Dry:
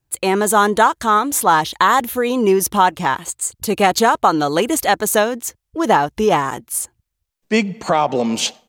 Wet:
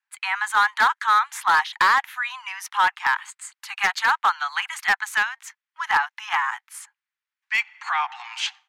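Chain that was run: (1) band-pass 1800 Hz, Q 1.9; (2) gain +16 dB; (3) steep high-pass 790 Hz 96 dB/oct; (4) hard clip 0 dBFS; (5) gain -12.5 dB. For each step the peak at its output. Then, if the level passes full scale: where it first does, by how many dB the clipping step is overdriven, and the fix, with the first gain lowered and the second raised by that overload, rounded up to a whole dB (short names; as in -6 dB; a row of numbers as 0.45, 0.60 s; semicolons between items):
-6.0, +10.0, +9.0, 0.0, -12.5 dBFS; step 2, 9.0 dB; step 2 +7 dB, step 5 -3.5 dB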